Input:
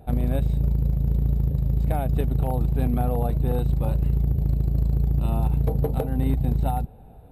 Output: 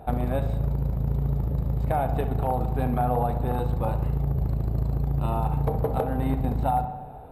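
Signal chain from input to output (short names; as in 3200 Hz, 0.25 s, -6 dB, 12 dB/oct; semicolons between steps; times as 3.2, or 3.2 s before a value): bell 1000 Hz +12 dB 2.1 oct; de-hum 98.78 Hz, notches 40; compressor 2:1, threshold -24 dBFS, peak gain reduction 6 dB; darkening echo 64 ms, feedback 72%, low-pass 2900 Hz, level -11 dB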